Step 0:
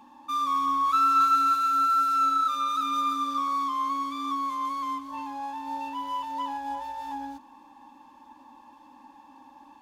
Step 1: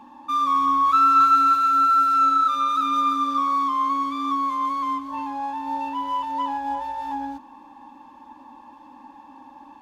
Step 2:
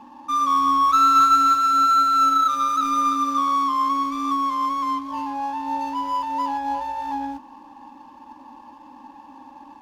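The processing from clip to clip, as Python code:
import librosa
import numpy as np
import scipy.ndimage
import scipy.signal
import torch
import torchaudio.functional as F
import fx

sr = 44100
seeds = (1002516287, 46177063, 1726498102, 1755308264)

y1 = fx.high_shelf(x, sr, hz=3600.0, db=-9.5)
y1 = F.gain(torch.from_numpy(y1), 6.5).numpy()
y2 = scipy.signal.medfilt(y1, 15)
y2 = F.gain(torch.from_numpy(y2), 2.0).numpy()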